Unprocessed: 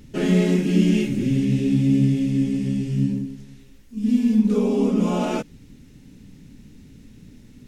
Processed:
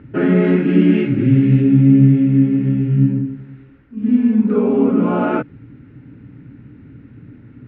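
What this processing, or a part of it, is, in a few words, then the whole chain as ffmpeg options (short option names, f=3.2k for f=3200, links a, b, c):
bass cabinet: -filter_complex "[0:a]highpass=73,equalizer=f=120:t=q:w=4:g=9,equalizer=f=200:t=q:w=4:g=-5,equalizer=f=300:t=q:w=4:g=6,equalizer=f=1.4k:t=q:w=4:g=9,lowpass=f=2.2k:w=0.5412,lowpass=f=2.2k:w=1.3066,asettb=1/sr,asplit=3[a][b][c];[a]atrim=end=0.444[d];[b]atrim=start=0.44:end=1.62,asetpts=PTS-STARTPTS,afade=t=in:d=0.004:c=qsin,afade=t=out:st=1.176:d=0.004:c=qsin,equalizer=f=7k:w=0.3:g=5.5[e];[c]atrim=start=1.616[f];[d][e]acrossfade=d=0.004:c1=hsin:c2=qsin[g];[g][f]acrossfade=d=0.004:c1=qsin:c2=hsin,volume=5dB"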